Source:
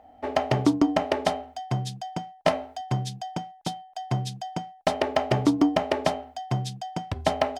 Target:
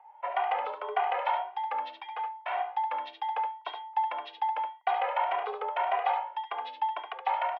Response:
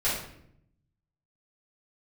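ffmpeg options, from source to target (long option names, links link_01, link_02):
-filter_complex "[0:a]dynaudnorm=framelen=150:gausssize=5:maxgain=8dB,alimiter=limit=-13.5dB:level=0:latency=1:release=29,asettb=1/sr,asplit=3[link_01][link_02][link_03];[link_01]atrim=end=1.894[link_04];[link_02]atrim=start=1.89:end=2.6,asetpts=PTS-STARTPTS,afade=type=in:duration=0.004:curve=qsin,afade=type=out:start_time=0.706:duration=0.004:curve=qsin,volume=24dB,asoftclip=hard,volume=-24dB[link_05];[link_03]atrim=start=2.596[link_06];[link_04][link_05]acrossfade=duration=0.004:curve1=hsin:curve2=qsin[link_07];[link_07][link_06]acrossfade=duration=0.004:curve1=qsin:curve2=hsin,aecho=1:1:71:0.501,highpass=frequency=480:width_type=q:width=0.5412,highpass=frequency=480:width_type=q:width=1.307,lowpass=frequency=2800:width_type=q:width=0.5176,lowpass=frequency=2800:width_type=q:width=0.7071,lowpass=frequency=2800:width_type=q:width=1.932,afreqshift=130,asplit=2[link_08][link_09];[link_09]adelay=2,afreqshift=1.8[link_10];[link_08][link_10]amix=inputs=2:normalize=1"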